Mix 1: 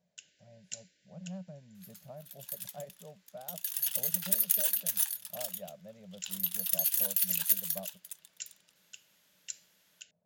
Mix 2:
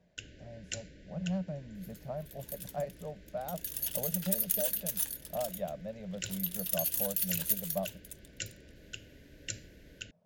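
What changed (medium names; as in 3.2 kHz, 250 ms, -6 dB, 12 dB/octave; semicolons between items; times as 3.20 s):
speech +8.5 dB; first sound: remove differentiator; second sound -3.5 dB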